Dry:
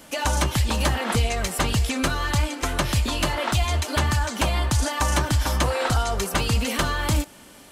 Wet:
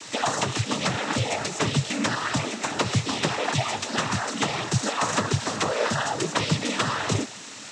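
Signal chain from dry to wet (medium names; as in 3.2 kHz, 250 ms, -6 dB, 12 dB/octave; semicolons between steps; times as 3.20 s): word length cut 6-bit, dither triangular; noise-vocoded speech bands 12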